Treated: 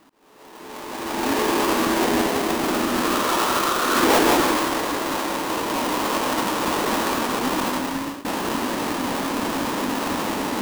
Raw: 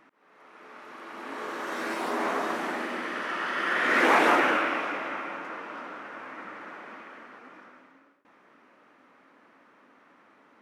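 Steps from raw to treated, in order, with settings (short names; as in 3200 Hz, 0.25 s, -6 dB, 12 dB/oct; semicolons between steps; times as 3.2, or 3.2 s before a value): half-waves squared off; recorder AGC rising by 10 dB/s; formant shift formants -5 st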